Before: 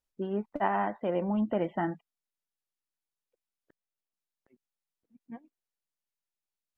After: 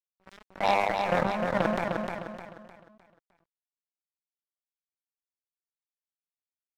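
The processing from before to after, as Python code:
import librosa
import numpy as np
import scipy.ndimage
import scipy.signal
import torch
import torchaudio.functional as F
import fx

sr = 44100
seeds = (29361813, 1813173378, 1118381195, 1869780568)

p1 = scipy.signal.sosfilt(scipy.signal.cheby1(2, 1.0, [130.0, 770.0], 'bandpass', fs=sr, output='sos'), x)
p2 = fx.peak_eq(p1, sr, hz=240.0, db=-6.0, octaves=0.96)
p3 = fx.hum_notches(p2, sr, base_hz=50, count=10)
p4 = fx.transient(p3, sr, attack_db=4, sustain_db=-10)
p5 = fx.rider(p4, sr, range_db=3, speed_s=0.5)
p6 = p4 + F.gain(torch.from_numpy(p5), -1.5).numpy()
p7 = fx.transient(p6, sr, attack_db=-6, sustain_db=10)
p8 = fx.fixed_phaser(p7, sr, hz=380.0, stages=6)
p9 = fx.cheby_harmonics(p8, sr, harmonics=(4, 6, 7, 8), levels_db=(-18, -19, -14, -42), full_scale_db=-14.5)
p10 = np.sign(p9) * np.maximum(np.abs(p9) - 10.0 ** (-44.5 / 20.0), 0.0)
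p11 = fx.echo_feedback(p10, sr, ms=305, feedback_pct=37, wet_db=-5)
p12 = fx.sustainer(p11, sr, db_per_s=32.0)
y = F.gain(torch.from_numpy(p12), 1.5).numpy()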